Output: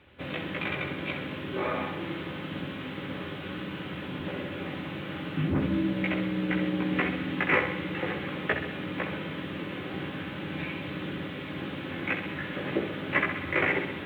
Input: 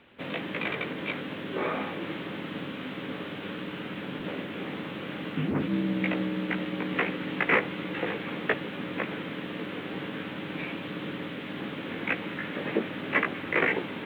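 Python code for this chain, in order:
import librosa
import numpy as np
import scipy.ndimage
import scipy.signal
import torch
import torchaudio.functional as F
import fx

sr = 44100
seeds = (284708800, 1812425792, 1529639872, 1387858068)

p1 = fx.peak_eq(x, sr, hz=79.0, db=15.0, octaves=0.67)
p2 = fx.notch_comb(p1, sr, f0_hz=230.0)
y = p2 + fx.echo_feedback(p2, sr, ms=65, feedback_pct=57, wet_db=-8, dry=0)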